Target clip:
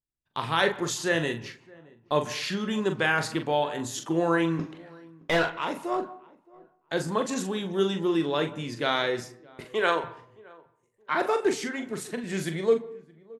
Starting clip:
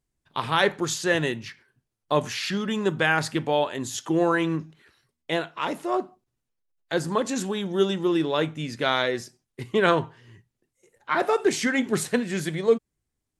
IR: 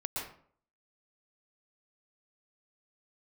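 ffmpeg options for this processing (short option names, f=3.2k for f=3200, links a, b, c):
-filter_complex "[0:a]agate=range=-13dB:threshold=-46dB:ratio=16:detection=peak,asettb=1/sr,asplit=3[a][b][c];[a]atrim=end=4.594[d];[b]atrim=start=4.59:end=5.52,asetpts=PTS-STARTPTS,afade=t=in:d=0.004:c=qsin,afade=t=out:st=0.926:d=0.004:c=qsin,asplit=2[e][f];[f]highpass=f=720:p=1,volume=26dB,asoftclip=type=tanh:threshold=-11dB[g];[e][g]amix=inputs=2:normalize=0,lowpass=f=1.7k:p=1,volume=-6dB[h];[c]atrim=start=5.516[i];[d][h]acrossfade=d=0.004:c1=hsin:c2=qsin[j];[j][i]acrossfade=d=0.004:c1=qsin:c2=hsin,asettb=1/sr,asplit=3[k][l][m];[k]atrim=end=9.604[n];[l]atrim=start=9.6:end=10.04,asetpts=PTS-STARTPTS,afade=t=in:d=0.004:c=qsin,afade=t=out:st=0.436:d=0.004:c=qsin,highpass=420[o];[m]atrim=start=10.036[p];[n][o]acrossfade=d=0.004:c1=hsin:c2=qsin[q];[q][p]acrossfade=d=0.004:c1=qsin:c2=hsin,asettb=1/sr,asplit=3[r][s][t];[r]atrim=end=11.504[u];[s]atrim=start=11.5:end=12.24,asetpts=PTS-STARTPTS,afade=t=in:d=0.004:c=qsin,afade=t=out:st=0.736:d=0.004:c=qsin,acompressor=threshold=-33dB:ratio=2[v];[t]atrim=start=12.236[w];[u][v]acrossfade=d=0.004:c1=hsin:c2=qsin[x];[x][w]acrossfade=d=0.004:c1=qsin:c2=hsin,asplit=2[y][z];[z]adelay=42,volume=-8dB[aa];[y][aa]amix=inputs=2:normalize=0,asplit=2[ab][ac];[ac]adelay=620,lowpass=f=1k:p=1,volume=-23dB,asplit=2[ad][ae];[ae]adelay=620,lowpass=f=1k:p=1,volume=0.29[af];[ab][ad][af]amix=inputs=3:normalize=0,asplit=2[ag][ah];[1:a]atrim=start_sample=2205,lowpass=3.1k,adelay=18[ai];[ah][ai]afir=irnorm=-1:irlink=0,volume=-19.5dB[aj];[ag][aj]amix=inputs=2:normalize=0,volume=-3dB"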